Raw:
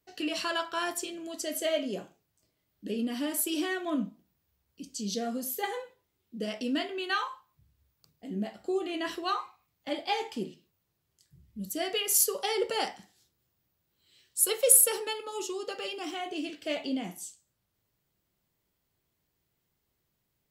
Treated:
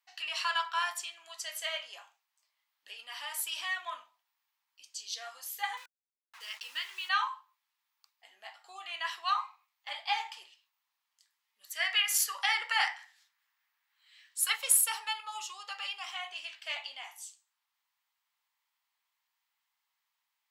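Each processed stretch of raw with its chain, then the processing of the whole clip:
5.77–7.09 fixed phaser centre 310 Hz, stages 4 + requantised 8-bit, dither none
11.61–14.56 bell 1800 Hz +10 dB 0.89 oct + notches 60/120/180/240/300/360/420/480/540/600 Hz
whole clip: Chebyshev high-pass 890 Hz, order 4; high shelf 6000 Hz -9.5 dB; notch 1500 Hz, Q 18; gain +3 dB

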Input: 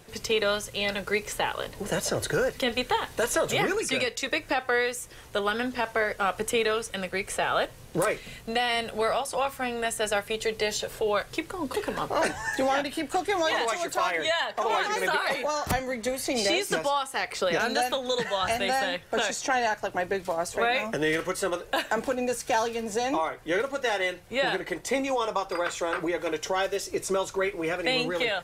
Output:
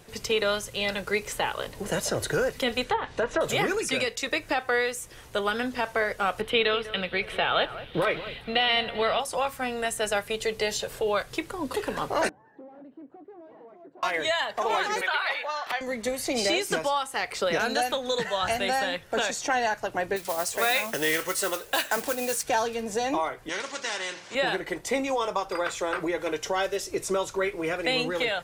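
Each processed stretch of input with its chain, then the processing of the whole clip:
2.84–3.41 LPF 9300 Hz + treble ducked by the level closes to 1500 Hz, closed at -21 dBFS
6.41–9.2 resonant high shelf 4900 Hz -12.5 dB, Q 3 + echo with dull and thin repeats by turns 0.195 s, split 2100 Hz, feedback 65%, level -13.5 dB
12.29–14.03 hard clip -29.5 dBFS + ladder band-pass 310 Hz, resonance 20%
15.01–15.81 HPF 820 Hz + resonant high shelf 4900 Hz -12.5 dB, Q 1.5
20.16–22.43 modulation noise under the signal 16 dB + tilt +2 dB/oct
23.49–24.35 speaker cabinet 450–6600 Hz, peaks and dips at 470 Hz -6 dB, 740 Hz -10 dB, 1300 Hz -5 dB, 2600 Hz -4 dB, 3900 Hz -4 dB + spectral compressor 2:1
whole clip: dry

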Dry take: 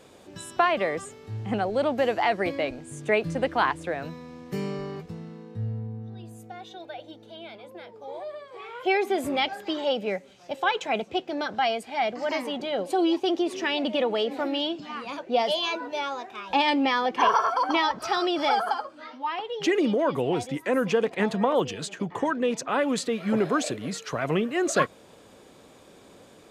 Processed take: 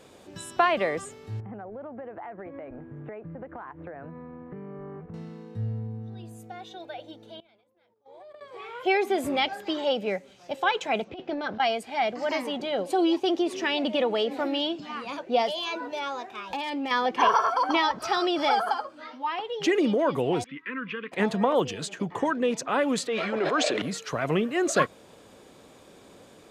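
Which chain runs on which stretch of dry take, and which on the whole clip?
1.4–5.14 LPF 1700 Hz 24 dB/oct + compressor 10:1, threshold -36 dBFS
7.4–8.41 gate -38 dBFS, range -30 dB + compressor, threshold -45 dBFS + transient shaper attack -5 dB, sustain +11 dB
11.04–11.6 air absorption 160 m + negative-ratio compressor -31 dBFS, ratio -0.5
15.46–16.91 compressor 8:1, threshold -27 dBFS + hard clip -24 dBFS
20.44–21.12 Butterworth band-stop 710 Hz, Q 0.58 + speaker cabinet 330–2800 Hz, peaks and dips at 350 Hz -10 dB, 580 Hz -7 dB, 1100 Hz +8 dB
23.07–23.82 BPF 420–4700 Hz + sustainer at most 21 dB/s
whole clip: dry

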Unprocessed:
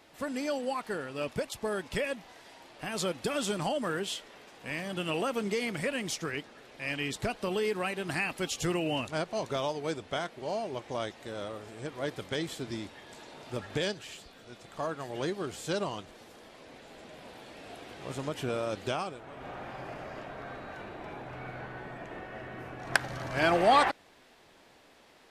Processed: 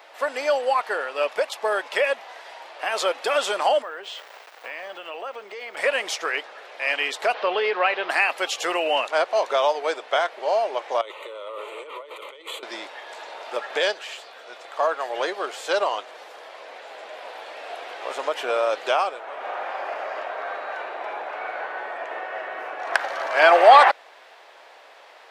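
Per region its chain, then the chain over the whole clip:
3.82–5.77 air absorption 79 m + sample gate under -49.5 dBFS + compressor 5:1, threshold -41 dBFS
7.34–8.1 zero-crossing step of -43.5 dBFS + LPF 4300 Hz 24 dB/oct
11.01–12.63 fixed phaser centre 1100 Hz, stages 8 + negative-ratio compressor -46 dBFS
whole clip: HPF 540 Hz 24 dB/oct; bell 11000 Hz -13 dB 2.1 oct; maximiser +15 dB; gain -1 dB

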